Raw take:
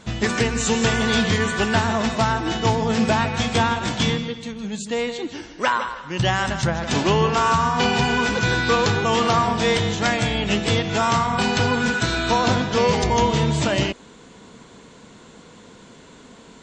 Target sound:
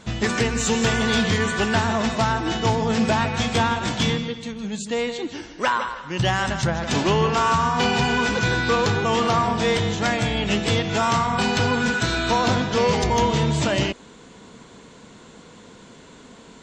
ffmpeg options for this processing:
-filter_complex "[0:a]asettb=1/sr,asplit=3[s0][s1][s2];[s0]atrim=end=8.484[s3];[s1]atrim=start=8.48:end=10.37,asetpts=PTS-STARTPTS,afade=t=in:d=0.004:c=qsin,afade=t=out:st=1.886:d=0.004:c=qsin,equalizer=f=5300:w=0.33:g=-2[s4];[s2]atrim=start=10.366[s5];[s3][s4]acrossfade=d=0.004:c1=hsin:c2=qsin[s6];[s6][s5]acrossfade=d=0.004:c1=qsin:c2=hsin,asoftclip=type=tanh:threshold=0.316"

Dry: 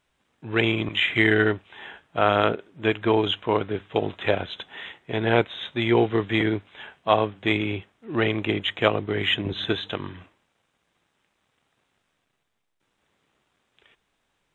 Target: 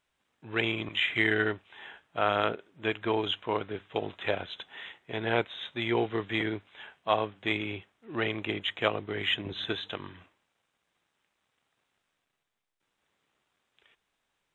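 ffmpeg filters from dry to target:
-af "lowshelf=f=490:g=-5.5,volume=0.562"

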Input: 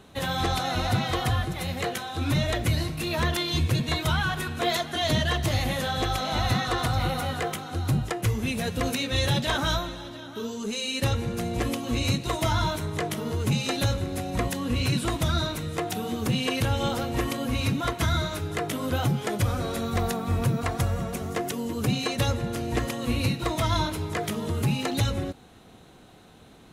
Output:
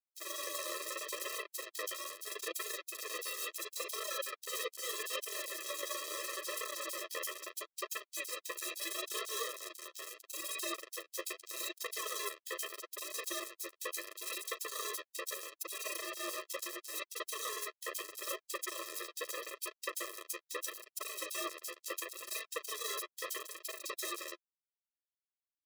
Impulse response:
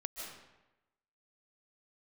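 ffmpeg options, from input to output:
-filter_complex "[0:a]highpass=f=530:w=0.5412,highpass=f=530:w=1.3066,highshelf=f=2900:g=4.5,areverse,acompressor=threshold=0.00891:ratio=6,areverse,acrusher=bits=5:mix=0:aa=0.000001,flanger=delay=4.6:depth=7.9:regen=7:speed=0.73:shape=sinusoidal,afreqshift=-220,acrossover=split=3700[s0][s1];[s0]adelay=40[s2];[s2][s1]amix=inputs=2:normalize=0,asetrate=45938,aresample=44100,afftfilt=real='re*eq(mod(floor(b*sr/1024/340),2),1)':imag='im*eq(mod(floor(b*sr/1024/340),2),1)':win_size=1024:overlap=0.75,volume=3.76"

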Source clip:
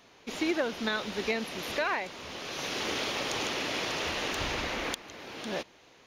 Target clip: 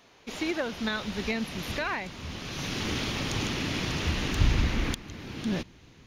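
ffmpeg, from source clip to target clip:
-af "asubboost=boost=11:cutoff=180"

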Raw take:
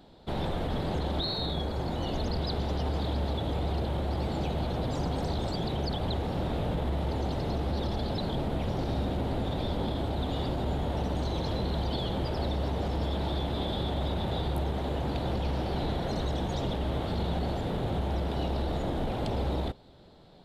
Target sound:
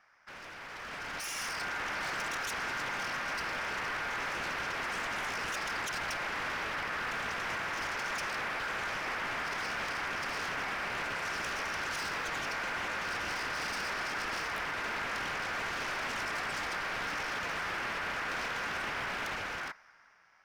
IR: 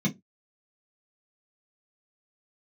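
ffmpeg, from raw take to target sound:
-af "aeval=exprs='0.0251*(abs(mod(val(0)/0.0251+3,4)-2)-1)':c=same,aeval=exprs='val(0)*sin(2*PI*1500*n/s)':c=same,dynaudnorm=f=200:g=11:m=3.98,volume=0.398"

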